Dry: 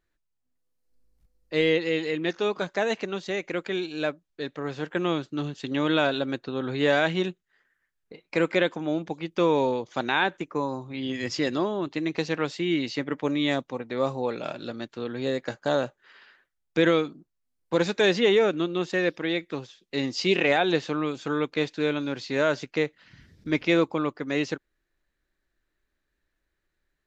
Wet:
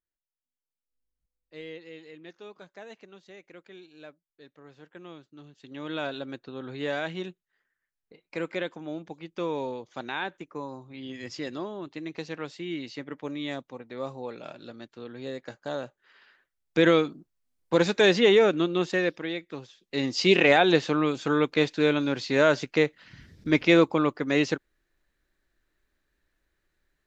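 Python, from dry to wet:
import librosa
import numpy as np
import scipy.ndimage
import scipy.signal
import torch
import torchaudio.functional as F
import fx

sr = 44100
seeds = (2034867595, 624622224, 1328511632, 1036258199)

y = fx.gain(x, sr, db=fx.line((5.47, -19.0), (6.04, -8.5), (15.82, -8.5), (16.92, 1.5), (18.86, 1.5), (19.43, -7.0), (20.28, 3.0)))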